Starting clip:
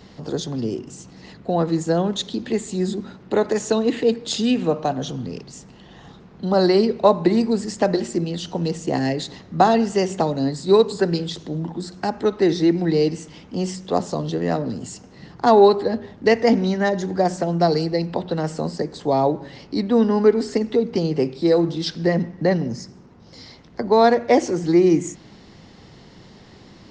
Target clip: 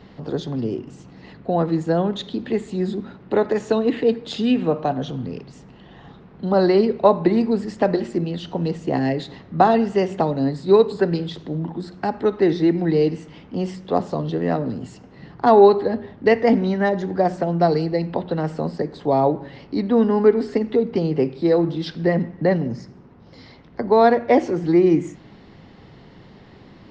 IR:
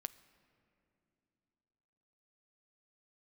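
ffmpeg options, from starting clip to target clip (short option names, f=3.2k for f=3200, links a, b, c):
-filter_complex "[0:a]asplit=2[a][b];[1:a]atrim=start_sample=2205,atrim=end_sample=4410,lowpass=3.6k[c];[b][c]afir=irnorm=-1:irlink=0,volume=13dB[d];[a][d]amix=inputs=2:normalize=0,volume=-11.5dB"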